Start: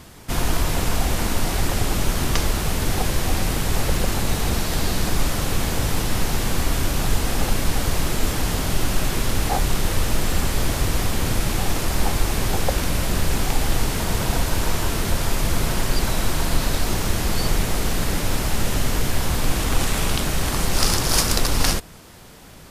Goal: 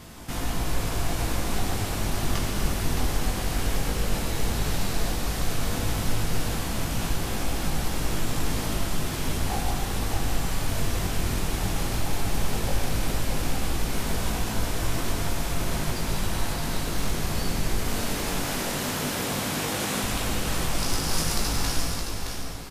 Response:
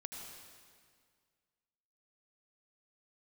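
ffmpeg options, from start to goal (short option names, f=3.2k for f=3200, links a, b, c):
-filter_complex "[0:a]asettb=1/sr,asplit=3[a][b][c];[a]atrim=end=17.804[d];[b]atrim=start=17.8:end=20.04,asetpts=PTS-STARTPTS,afade=t=in:d=0.004:c=qsin,afade=t=out:st=2.236:d=0.004:c=qsin,highpass=170[e];[c]atrim=start=20.036[f];[d][e]acrossfade=d=0.004:c1=hsin:c2=qsin[g];[g][f]acrossfade=d=0.004:c1=qsin:c2=hsin,acompressor=threshold=-31dB:ratio=2,flanger=delay=18:depth=3.2:speed=0.14,aecho=1:1:617:0.501[h];[1:a]atrim=start_sample=2205[i];[h][i]afir=irnorm=-1:irlink=0,volume=7dB"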